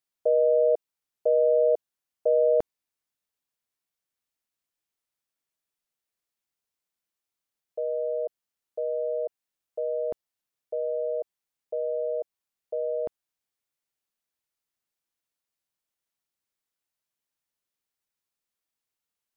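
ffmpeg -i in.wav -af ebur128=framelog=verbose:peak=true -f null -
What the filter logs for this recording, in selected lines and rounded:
Integrated loudness:
  I:         -27.1 LUFS
  Threshold: -37.5 LUFS
Loudness range:
  LRA:        13.0 LU
  Threshold: -51.3 LUFS
  LRA low:   -38.5 LUFS
  LRA high:  -25.5 LUFS
True peak:
  Peak:      -14.5 dBFS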